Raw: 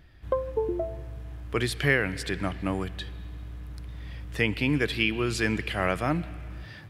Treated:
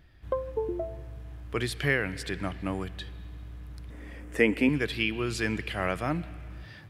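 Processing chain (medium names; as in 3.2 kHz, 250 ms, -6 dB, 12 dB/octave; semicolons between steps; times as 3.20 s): 3.90–4.69 s: graphic EQ 125/250/500/2000/4000/8000 Hz -12/+10/+8/+6/-10/+8 dB; trim -3 dB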